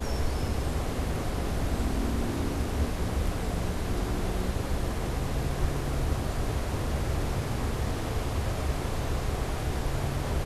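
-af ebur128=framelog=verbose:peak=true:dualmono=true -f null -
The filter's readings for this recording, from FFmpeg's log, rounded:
Integrated loudness:
  I:         -28.1 LUFS
  Threshold: -38.1 LUFS
Loudness range:
  LRA:         0.5 LU
  Threshold: -48.1 LUFS
  LRA low:   -28.3 LUFS
  LRA high:  -27.8 LUFS
True peak:
  Peak:      -14.8 dBFS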